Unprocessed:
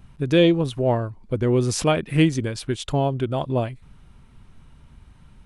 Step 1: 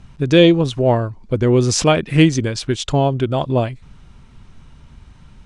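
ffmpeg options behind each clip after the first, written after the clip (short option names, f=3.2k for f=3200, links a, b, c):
-af "lowpass=f=6.6k:t=q:w=1.5,volume=5.5dB"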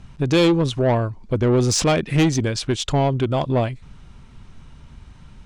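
-af "asoftclip=type=tanh:threshold=-12dB"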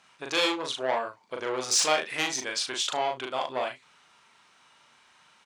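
-filter_complex "[0:a]highpass=830,asplit=2[a][b];[b]aecho=0:1:39|74:0.708|0.158[c];[a][c]amix=inputs=2:normalize=0,volume=-3dB"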